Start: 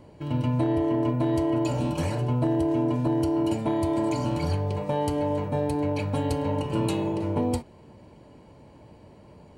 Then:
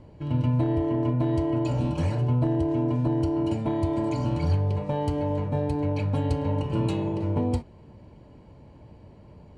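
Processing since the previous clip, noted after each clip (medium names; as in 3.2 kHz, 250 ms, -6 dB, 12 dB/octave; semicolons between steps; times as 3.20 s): Bessel low-pass 5.9 kHz, order 2; bass shelf 140 Hz +10.5 dB; trim -3 dB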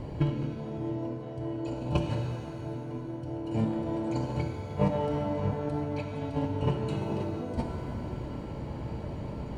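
compressor with a negative ratio -32 dBFS, ratio -0.5; pitch-shifted reverb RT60 2.2 s, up +7 st, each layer -8 dB, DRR 3.5 dB; trim +1.5 dB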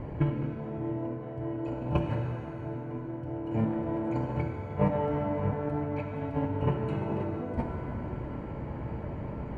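resonant high shelf 2.9 kHz -12.5 dB, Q 1.5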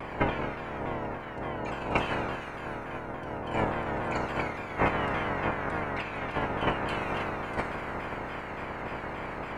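spectral peaks clipped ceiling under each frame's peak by 26 dB; vibrato with a chosen wave saw down 3.5 Hz, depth 160 cents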